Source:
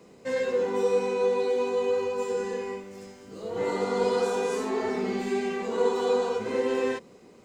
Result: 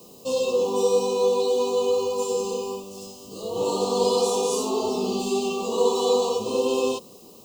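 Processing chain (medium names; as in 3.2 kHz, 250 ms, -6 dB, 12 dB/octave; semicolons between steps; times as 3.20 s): Chebyshev band-stop 1.2–2.7 kHz, order 4; treble shelf 2.8 kHz +11 dB; added noise violet -57 dBFS; trim +3.5 dB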